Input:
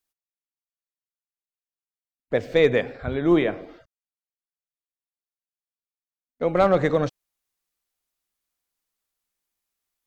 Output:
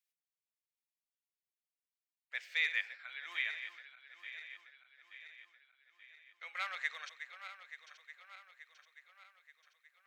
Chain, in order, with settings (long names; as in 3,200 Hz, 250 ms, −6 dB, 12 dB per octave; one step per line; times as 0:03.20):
feedback delay that plays each chunk backwards 440 ms, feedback 71%, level −10.5 dB
four-pole ladder high-pass 1,700 Hz, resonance 40%